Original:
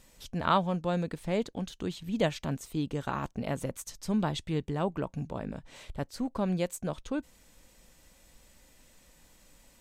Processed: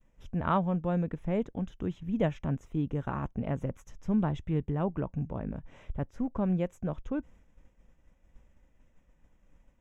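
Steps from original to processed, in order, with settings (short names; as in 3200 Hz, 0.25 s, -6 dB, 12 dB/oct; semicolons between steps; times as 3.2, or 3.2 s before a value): expander -52 dBFS; running mean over 10 samples; low shelf 190 Hz +9 dB; gain -2.5 dB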